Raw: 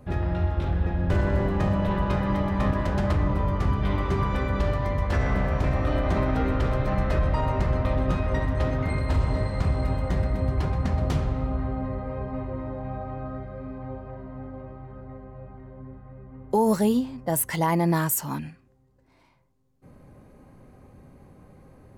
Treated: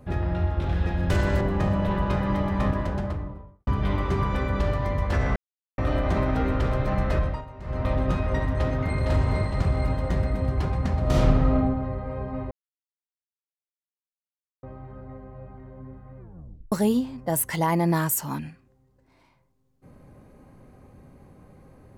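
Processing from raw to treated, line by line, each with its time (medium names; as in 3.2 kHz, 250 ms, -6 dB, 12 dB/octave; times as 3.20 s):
0.69–1.41 s: treble shelf 2.6 kHz +12 dB
2.56–3.67 s: studio fade out
5.36–5.78 s: mute
7.18–7.88 s: dip -17 dB, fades 0.27 s
8.54–9.00 s: echo throw 460 ms, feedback 55%, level -3.5 dB
11.02–11.55 s: reverb throw, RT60 0.99 s, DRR -5.5 dB
12.51–14.63 s: mute
16.19 s: tape stop 0.53 s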